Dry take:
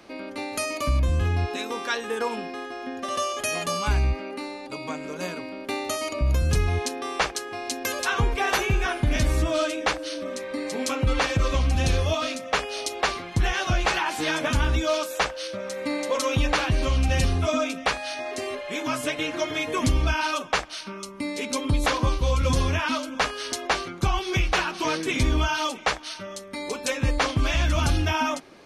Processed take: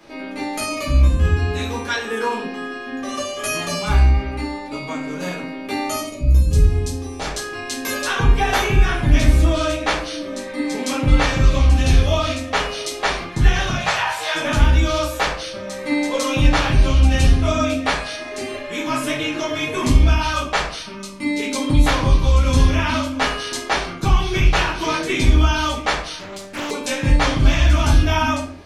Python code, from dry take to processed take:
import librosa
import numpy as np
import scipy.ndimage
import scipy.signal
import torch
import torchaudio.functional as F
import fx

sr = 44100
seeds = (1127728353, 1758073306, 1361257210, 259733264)

y = fx.peak_eq(x, sr, hz=1600.0, db=-14.0, octaves=2.5, at=(6.0, 7.25))
y = fx.steep_highpass(y, sr, hz=490.0, slope=36, at=(13.7, 14.34), fade=0.02)
y = fx.room_shoebox(y, sr, seeds[0], volume_m3=57.0, walls='mixed', distance_m=1.3)
y = fx.doppler_dist(y, sr, depth_ms=0.71, at=(26.19, 26.71))
y = y * 10.0 ** (-2.0 / 20.0)